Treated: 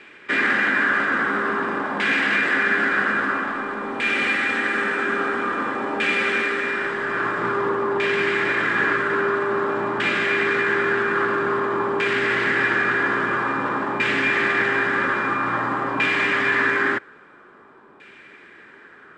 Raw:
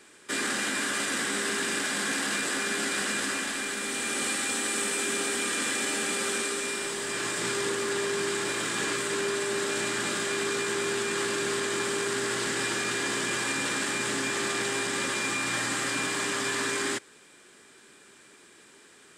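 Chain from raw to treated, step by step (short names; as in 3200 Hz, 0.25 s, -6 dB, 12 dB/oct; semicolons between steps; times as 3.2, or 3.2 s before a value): LFO low-pass saw down 0.5 Hz 980–2500 Hz; gain +6.5 dB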